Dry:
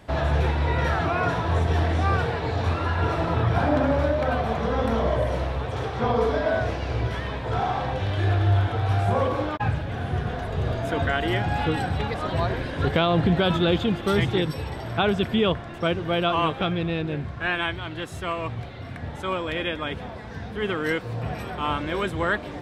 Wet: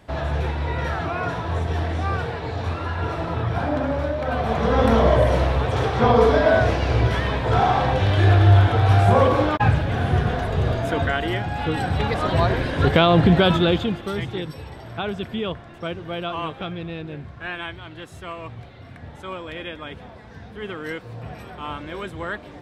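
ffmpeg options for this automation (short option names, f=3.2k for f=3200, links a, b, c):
-af "volume=15dB,afade=t=in:st=4.23:d=0.64:silence=0.354813,afade=t=out:st=10.1:d=1.44:silence=0.334965,afade=t=in:st=11.54:d=0.61:silence=0.398107,afade=t=out:st=13.38:d=0.73:silence=0.281838"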